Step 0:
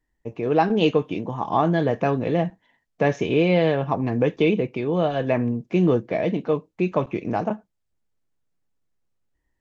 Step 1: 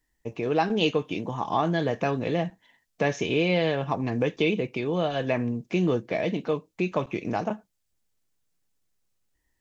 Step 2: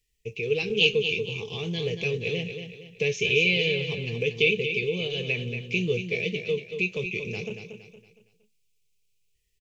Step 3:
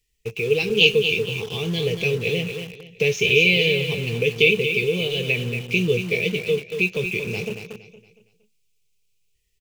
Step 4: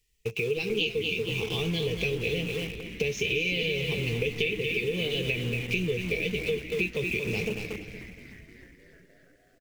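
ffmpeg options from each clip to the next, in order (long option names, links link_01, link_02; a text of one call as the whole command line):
ffmpeg -i in.wav -filter_complex "[0:a]highshelf=frequency=2600:gain=11.5,asplit=2[link_01][link_02];[link_02]acompressor=threshold=-26dB:ratio=6,volume=1dB[link_03];[link_01][link_03]amix=inputs=2:normalize=0,volume=-8dB" out.wav
ffmpeg -i in.wav -filter_complex "[0:a]firequalizer=gain_entry='entry(110,0);entry(200,-5);entry(290,-20);entry(430,5);entry(620,-22);entry(1000,-23);entry(1600,-20);entry(2400,10);entry(3700,4);entry(11000,1)':delay=0.05:min_phase=1,asplit=2[link_01][link_02];[link_02]aecho=0:1:232|464|696|928:0.398|0.151|0.0575|0.0218[link_03];[link_01][link_03]amix=inputs=2:normalize=0" out.wav
ffmpeg -i in.wav -filter_complex "[0:a]bandreject=frequency=1700:width=29,asplit=2[link_01][link_02];[link_02]acrusher=bits=5:mix=0:aa=0.000001,volume=-9dB[link_03];[link_01][link_03]amix=inputs=2:normalize=0,volume=3dB" out.wav
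ffmpeg -i in.wav -filter_complex "[0:a]acompressor=threshold=-26dB:ratio=6,asplit=2[link_01][link_02];[link_02]asplit=7[link_03][link_04][link_05][link_06][link_07][link_08][link_09];[link_03]adelay=304,afreqshift=-120,volume=-12.5dB[link_10];[link_04]adelay=608,afreqshift=-240,volume=-16.5dB[link_11];[link_05]adelay=912,afreqshift=-360,volume=-20.5dB[link_12];[link_06]adelay=1216,afreqshift=-480,volume=-24.5dB[link_13];[link_07]adelay=1520,afreqshift=-600,volume=-28.6dB[link_14];[link_08]adelay=1824,afreqshift=-720,volume=-32.6dB[link_15];[link_09]adelay=2128,afreqshift=-840,volume=-36.6dB[link_16];[link_10][link_11][link_12][link_13][link_14][link_15][link_16]amix=inputs=7:normalize=0[link_17];[link_01][link_17]amix=inputs=2:normalize=0" out.wav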